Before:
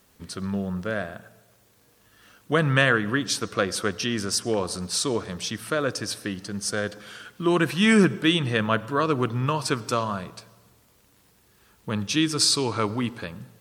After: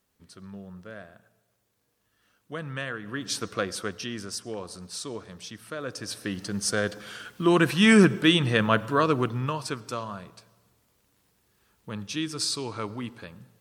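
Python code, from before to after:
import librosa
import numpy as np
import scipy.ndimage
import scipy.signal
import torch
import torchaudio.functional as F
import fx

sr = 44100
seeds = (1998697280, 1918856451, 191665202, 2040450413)

y = fx.gain(x, sr, db=fx.line((2.98, -14.0), (3.37, -3.0), (4.5, -10.5), (5.76, -10.5), (6.42, 1.0), (9.02, 1.0), (9.79, -8.0)))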